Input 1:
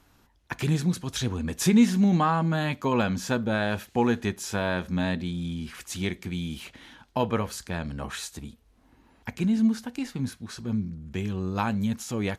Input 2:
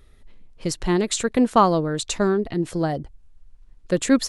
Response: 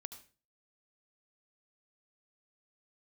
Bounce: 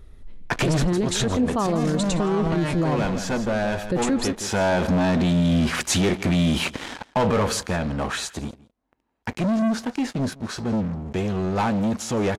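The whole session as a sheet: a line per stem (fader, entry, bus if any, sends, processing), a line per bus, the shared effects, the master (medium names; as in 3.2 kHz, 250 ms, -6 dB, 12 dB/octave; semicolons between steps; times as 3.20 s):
7.35 s -2 dB -> 7.79 s -11 dB, 0.00 s, no send, echo send -21.5 dB, waveshaping leveller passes 5; low-pass 9.4 kHz 12 dB/octave; peaking EQ 610 Hz +6.5 dB 2.5 oct; auto duck -12 dB, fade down 1.95 s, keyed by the second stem
-2.0 dB, 0.00 s, no send, echo send -16.5 dB, bass shelf 480 Hz +9.5 dB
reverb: none
echo: delay 166 ms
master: peak limiter -14 dBFS, peak gain reduction 12 dB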